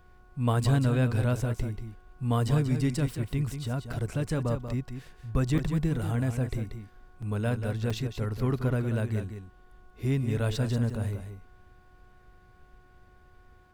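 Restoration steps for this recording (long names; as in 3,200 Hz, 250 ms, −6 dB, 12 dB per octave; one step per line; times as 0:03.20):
hum removal 365.7 Hz, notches 4
repair the gap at 0:01.77/0:03.93/0:04.68/0:05.58/0:07.22/0:07.90/0:10.90, 4.9 ms
downward expander −47 dBFS, range −21 dB
echo removal 186 ms −8.5 dB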